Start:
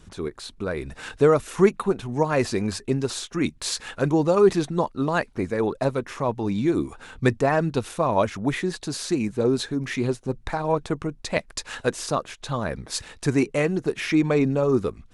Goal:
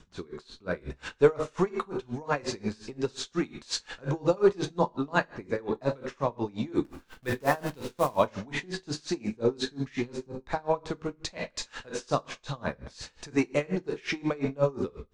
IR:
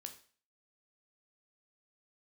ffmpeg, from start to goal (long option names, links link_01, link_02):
-filter_complex "[0:a]acrossover=split=330|3400[link_01][link_02][link_03];[link_01]asoftclip=type=tanh:threshold=-25dB[link_04];[link_04][link_02][link_03]amix=inputs=3:normalize=0,lowpass=frequency=7100:width=0.5412,lowpass=frequency=7100:width=1.3066,asettb=1/sr,asplit=3[link_05][link_06][link_07];[link_05]atrim=end=6.844[link_08];[link_06]atrim=start=6.84:end=8.16,asetpts=PTS-STARTPTS,afade=type=in:duration=0.004:curve=qsin,afade=type=out:start_time=1.316:duration=0.004:curve=qsin,acrusher=bits=6:dc=4:mix=0:aa=0.000001[link_09];[link_07]atrim=start=8.156[link_10];[link_08][link_09]acrossfade=duration=0.004:curve1=hsin:curve2=qsin[link_11];[link_11][link_10]acrossfade=duration=0.004:curve1=qsin:curve2=hsin[link_12];[1:a]atrim=start_sample=2205,asetrate=40572,aresample=44100[link_13];[link_12][link_13]afir=irnorm=-1:irlink=0,aeval=exprs='val(0)*pow(10,-26*(0.5-0.5*cos(2*PI*5.6*n/s))/20)':channel_layout=same,volume=5dB"